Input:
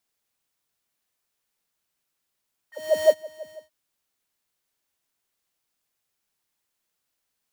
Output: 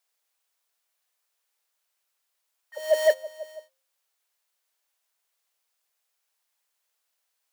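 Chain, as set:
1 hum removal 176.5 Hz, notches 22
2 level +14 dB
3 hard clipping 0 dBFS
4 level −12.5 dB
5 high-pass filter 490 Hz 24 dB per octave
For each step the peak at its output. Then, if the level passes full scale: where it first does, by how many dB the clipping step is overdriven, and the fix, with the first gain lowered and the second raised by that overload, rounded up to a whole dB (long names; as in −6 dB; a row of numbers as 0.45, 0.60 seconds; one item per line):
−6.0, +8.0, 0.0, −12.5, −11.0 dBFS
step 2, 8.0 dB
step 2 +6 dB, step 4 −4.5 dB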